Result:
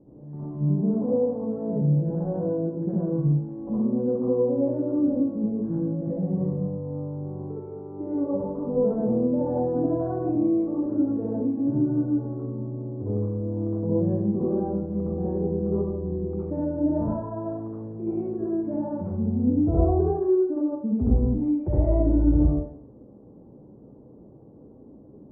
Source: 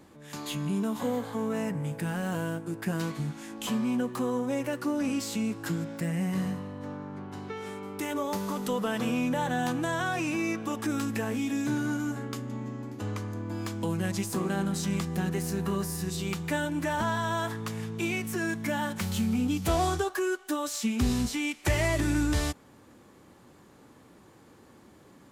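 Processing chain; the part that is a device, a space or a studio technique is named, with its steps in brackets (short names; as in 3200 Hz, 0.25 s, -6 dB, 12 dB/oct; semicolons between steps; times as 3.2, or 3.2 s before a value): next room (LPF 580 Hz 24 dB/oct; reverb RT60 0.70 s, pre-delay 57 ms, DRR -8 dB)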